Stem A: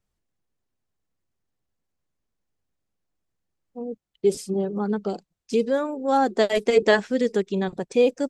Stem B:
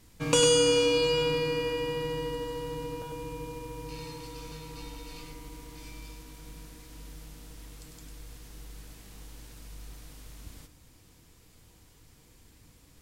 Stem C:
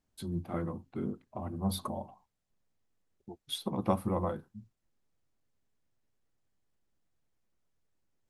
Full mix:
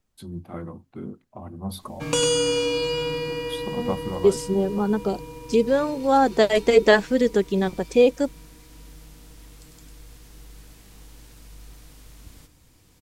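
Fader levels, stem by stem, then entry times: +2.5, +0.5, 0.0 dB; 0.00, 1.80, 0.00 s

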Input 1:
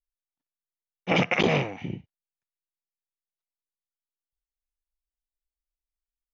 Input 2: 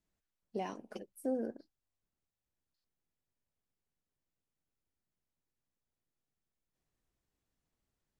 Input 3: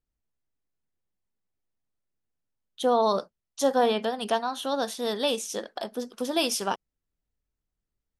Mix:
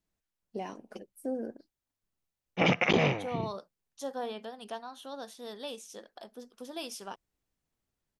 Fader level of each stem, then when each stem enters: -2.5, +0.5, -14.0 dB; 1.50, 0.00, 0.40 s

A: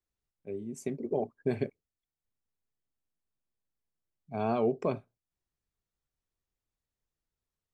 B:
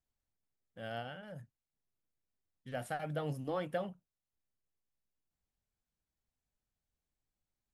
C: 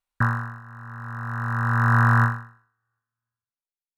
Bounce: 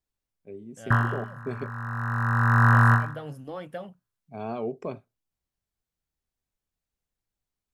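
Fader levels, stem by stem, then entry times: -3.5, -0.5, 0.0 dB; 0.00, 0.00, 0.70 s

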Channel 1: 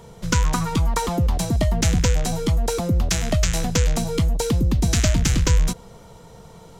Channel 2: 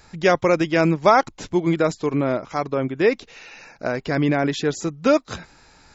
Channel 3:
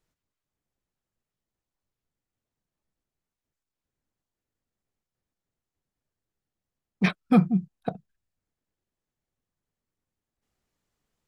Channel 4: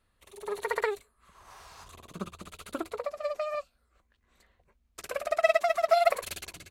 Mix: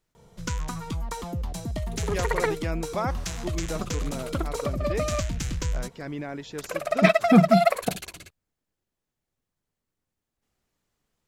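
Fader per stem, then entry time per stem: -11.0, -14.5, +2.5, +3.0 dB; 0.15, 1.90, 0.00, 1.60 s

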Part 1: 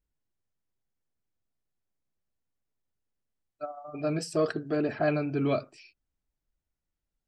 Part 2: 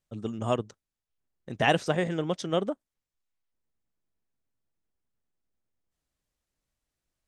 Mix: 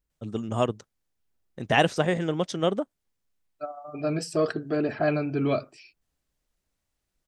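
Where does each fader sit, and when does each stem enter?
+2.0, +2.5 dB; 0.00, 0.10 s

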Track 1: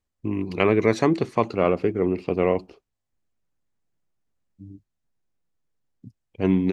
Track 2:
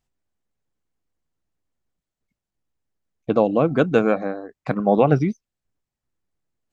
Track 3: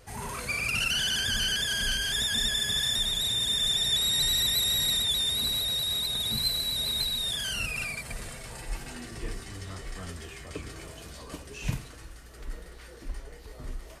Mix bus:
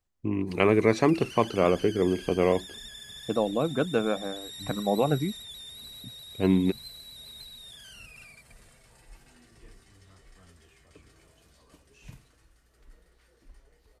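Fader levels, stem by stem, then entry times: -2.0, -8.5, -16.5 dB; 0.00, 0.00, 0.40 s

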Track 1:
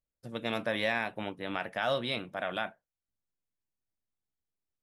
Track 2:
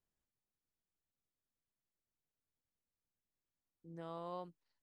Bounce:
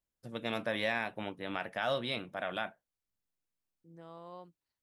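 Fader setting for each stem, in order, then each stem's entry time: -2.5, -3.5 dB; 0.00, 0.00 s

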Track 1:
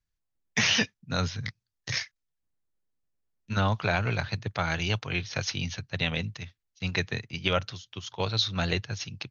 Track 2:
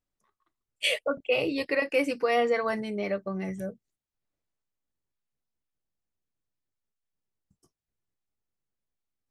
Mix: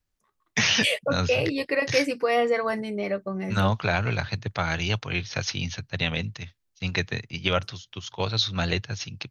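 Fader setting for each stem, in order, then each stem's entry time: +2.0, +2.0 dB; 0.00, 0.00 s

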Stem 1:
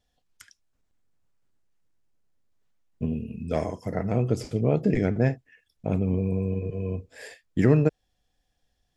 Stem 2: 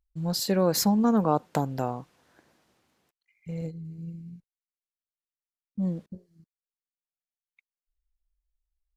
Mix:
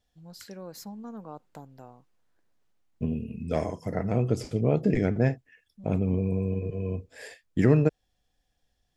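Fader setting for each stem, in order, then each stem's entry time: -1.0, -18.5 dB; 0.00, 0.00 s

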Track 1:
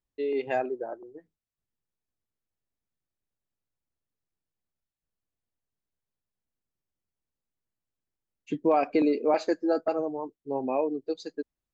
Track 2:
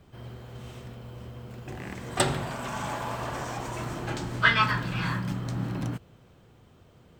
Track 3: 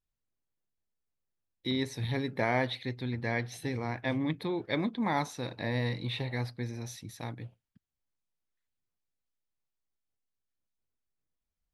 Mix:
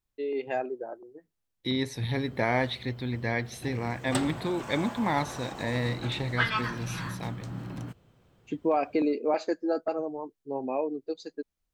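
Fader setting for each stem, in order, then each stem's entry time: -2.5, -6.5, +2.5 dB; 0.00, 1.95, 0.00 s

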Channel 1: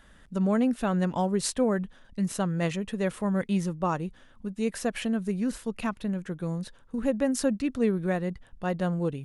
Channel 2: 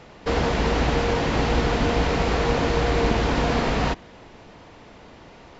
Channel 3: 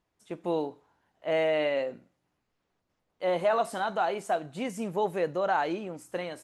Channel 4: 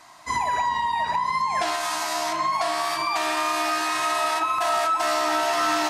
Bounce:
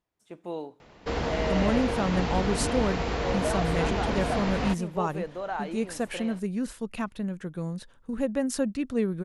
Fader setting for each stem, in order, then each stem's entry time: -1.5 dB, -7.0 dB, -6.0 dB, off; 1.15 s, 0.80 s, 0.00 s, off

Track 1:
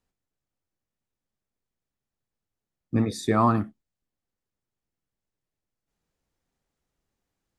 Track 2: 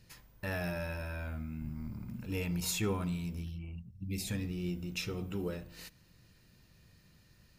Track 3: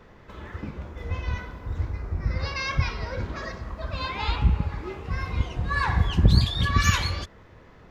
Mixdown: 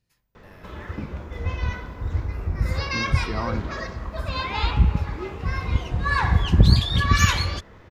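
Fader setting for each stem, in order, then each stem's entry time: -9.0, -15.5, +3.0 dB; 0.00, 0.00, 0.35 s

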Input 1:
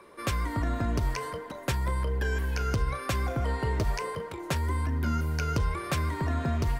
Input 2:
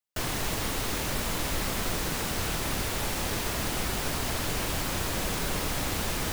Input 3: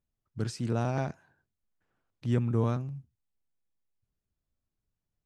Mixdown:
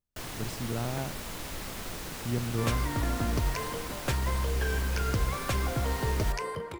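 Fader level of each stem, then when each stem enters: -1.0, -8.5, -4.0 dB; 2.40, 0.00, 0.00 s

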